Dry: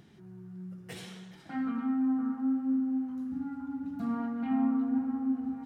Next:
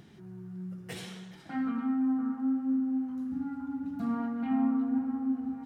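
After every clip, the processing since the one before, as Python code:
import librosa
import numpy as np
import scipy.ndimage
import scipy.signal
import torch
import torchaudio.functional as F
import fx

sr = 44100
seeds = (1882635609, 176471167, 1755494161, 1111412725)

y = fx.rider(x, sr, range_db=3, speed_s=2.0)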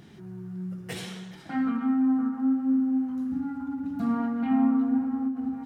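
y = fx.end_taper(x, sr, db_per_s=120.0)
y = y * 10.0 ** (5.0 / 20.0)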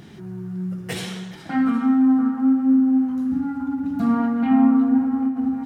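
y = x + 10.0 ** (-23.0 / 20.0) * np.pad(x, (int(768 * sr / 1000.0), 0))[:len(x)]
y = y * 10.0 ** (7.0 / 20.0)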